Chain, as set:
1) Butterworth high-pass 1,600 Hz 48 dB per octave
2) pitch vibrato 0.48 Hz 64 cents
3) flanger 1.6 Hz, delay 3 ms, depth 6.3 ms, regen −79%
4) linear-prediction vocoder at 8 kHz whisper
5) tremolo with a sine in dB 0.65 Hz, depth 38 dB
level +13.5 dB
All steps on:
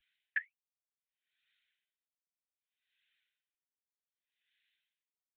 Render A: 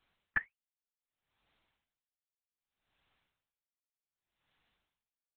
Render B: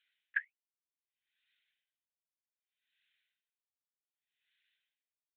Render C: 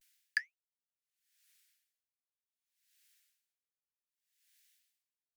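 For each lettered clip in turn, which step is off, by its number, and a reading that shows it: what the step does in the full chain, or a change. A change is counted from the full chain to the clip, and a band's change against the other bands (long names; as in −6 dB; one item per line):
1, change in integrated loudness +2.0 LU
2, change in momentary loudness spread −11 LU
4, change in crest factor +2.5 dB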